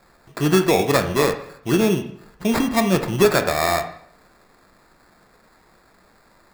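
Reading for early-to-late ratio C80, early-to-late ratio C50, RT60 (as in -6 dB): 13.0 dB, 10.5 dB, 0.65 s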